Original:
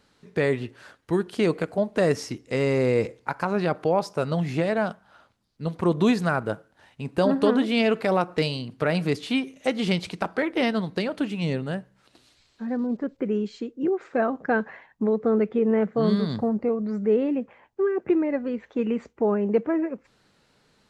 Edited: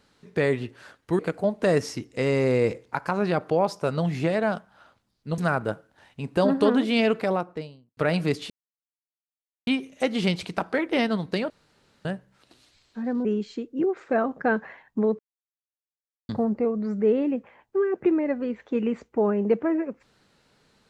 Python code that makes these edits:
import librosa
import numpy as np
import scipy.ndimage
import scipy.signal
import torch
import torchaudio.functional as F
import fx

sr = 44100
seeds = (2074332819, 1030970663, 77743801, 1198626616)

y = fx.studio_fade_out(x, sr, start_s=7.83, length_s=0.95)
y = fx.edit(y, sr, fx.cut(start_s=1.19, length_s=0.34),
    fx.cut(start_s=5.72, length_s=0.47),
    fx.insert_silence(at_s=9.31, length_s=1.17),
    fx.room_tone_fill(start_s=11.14, length_s=0.55),
    fx.cut(start_s=12.89, length_s=0.4),
    fx.silence(start_s=15.23, length_s=1.1), tone=tone)